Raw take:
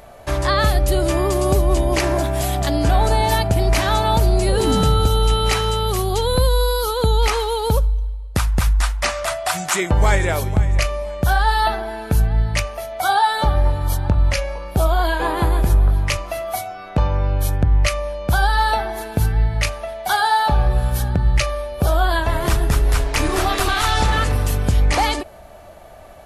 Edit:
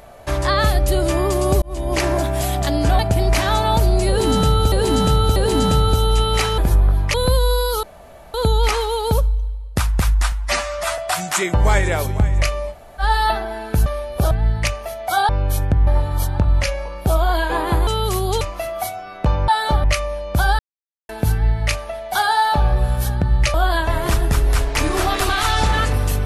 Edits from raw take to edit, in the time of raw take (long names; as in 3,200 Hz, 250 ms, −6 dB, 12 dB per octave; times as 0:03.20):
0:01.62–0:02.01: fade in
0:02.99–0:03.39: remove
0:04.48–0:05.12: repeat, 3 plays
0:05.70–0:06.24: swap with 0:15.57–0:16.13
0:06.93: splice in room tone 0.51 s
0:08.91–0:09.35: time-stretch 1.5×
0:11.09–0:11.38: fill with room tone, crossfade 0.06 s
0:13.21–0:13.57: swap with 0:17.20–0:17.78
0:18.53–0:19.03: silence
0:21.48–0:21.93: move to 0:12.23